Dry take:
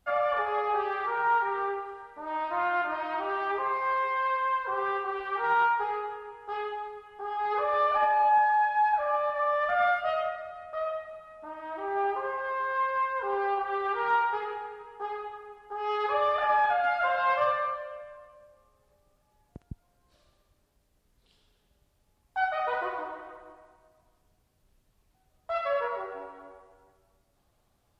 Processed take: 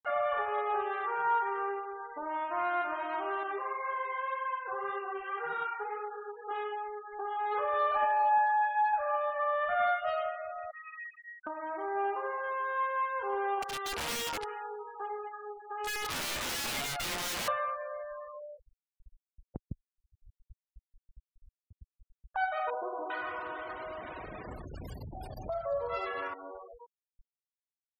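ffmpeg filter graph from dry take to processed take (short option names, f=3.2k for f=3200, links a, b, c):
-filter_complex "[0:a]asettb=1/sr,asplit=3[a][b][c];[a]atrim=end=3.434[d];[b]atrim=start=3.43:end=6.51,asetpts=PTS-STARTPTS,afade=t=in:d=0.004:c=qsin,afade=t=out:st=3.076:d=0.004:c=qsin,highshelf=f=4.1k:g=-2.5,bandreject=f=920:w=6.5,flanger=delay=4.5:depth=5.5:regen=-4:speed=1.9:shape=triangular[e];[c]atrim=start=6.506[f];[d][e]acrossfade=d=0.004:c1=hsin:c2=qsin[g];[g][f]acrossfade=d=0.004:c1=qsin:c2=hsin,asettb=1/sr,asplit=3[h][i][j];[h]atrim=end=10.714[k];[i]atrim=start=10.71:end=11.47,asetpts=PTS-STARTPTS,afade=t=in:d=0.004:c=qsin,afade=t=out:st=0.756:d=0.004:c=qsin,acompressor=threshold=-37dB:ratio=2.5:attack=3.2:release=140:knee=1:detection=peak,asuperpass=centerf=2100:order=8:qfactor=1.5[l];[j]atrim=start=11.466[m];[k][l]acrossfade=d=0.004:c1=hsin:c2=qsin[n];[n][m]acrossfade=d=0.004:c1=qsin:c2=hsin,asettb=1/sr,asplit=3[o][p][q];[o]atrim=end=13.624[r];[p]atrim=start=13.62:end=17.48,asetpts=PTS-STARTPTS,afade=t=in:d=0.004:c=qsin,afade=t=out:st=3.856:d=0.004:c=qsin,acrossover=split=1100[s][t];[s]aeval=exprs='val(0)*(1-0.7/2+0.7/2*cos(2*PI*2.6*n/s))':c=same[u];[t]aeval=exprs='val(0)*(1-0.7/2-0.7/2*cos(2*PI*2.6*n/s))':c=same[v];[u][v]amix=inputs=2:normalize=0,aeval=exprs='(mod(25.1*val(0)+1,2)-1)/25.1':c=same[w];[q]atrim=start=17.476[x];[r][w]acrossfade=d=0.004:c1=hsin:c2=qsin[y];[y][x]acrossfade=d=0.004:c1=qsin:c2=hsin,asettb=1/sr,asplit=3[z][aa][ab];[z]atrim=end=22.704[ac];[aa]atrim=start=22.7:end=26.34,asetpts=PTS-STARTPTS,afade=t=in:d=0.004:c=qsin,afade=t=out:st=3.636:d=0.004:c=qsin,aeval=exprs='val(0)+0.5*0.0119*sgn(val(0))':c=same,highpass=47,acrossover=split=190|1000[ad][ae][af];[af]adelay=400[ag];[ad]adelay=480[ah];[ah][ae][ag]amix=inputs=3:normalize=0,atrim=end_sample=160524[ai];[ab]atrim=start=26.336[aj];[ac][ai]acrossfade=d=0.004:c1=hsin:c2=qsin[ak];[ak][aj]acrossfade=d=0.004:c1=qsin:c2=hsin,afftfilt=real='re*gte(hypot(re,im),0.00631)':imag='im*gte(hypot(re,im),0.00631)':win_size=1024:overlap=0.75,acompressor=mode=upward:threshold=-28dB:ratio=2.5,volume=-3.5dB"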